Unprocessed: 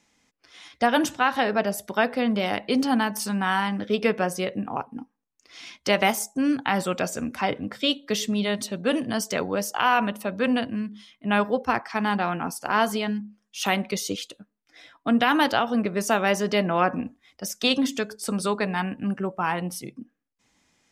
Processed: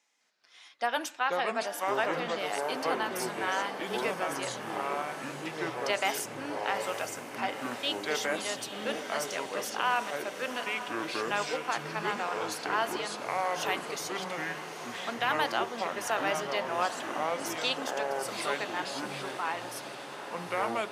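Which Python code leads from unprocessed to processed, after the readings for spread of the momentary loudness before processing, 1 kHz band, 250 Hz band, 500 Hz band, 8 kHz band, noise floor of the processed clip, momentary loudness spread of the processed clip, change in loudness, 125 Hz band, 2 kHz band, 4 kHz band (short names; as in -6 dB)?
11 LU, -5.0 dB, -15.0 dB, -6.0 dB, -5.0 dB, -43 dBFS, 6 LU, -7.0 dB, -13.5 dB, -4.5 dB, -5.5 dB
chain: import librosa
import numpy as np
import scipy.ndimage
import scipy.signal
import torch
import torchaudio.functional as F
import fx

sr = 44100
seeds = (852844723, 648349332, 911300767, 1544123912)

y = scipy.signal.sosfilt(scipy.signal.butter(2, 570.0, 'highpass', fs=sr, output='sos'), x)
y = fx.echo_pitch(y, sr, ms=209, semitones=-5, count=2, db_per_echo=-3.0)
y = fx.echo_diffused(y, sr, ms=867, feedback_pct=70, wet_db=-10.0)
y = y * librosa.db_to_amplitude(-7.0)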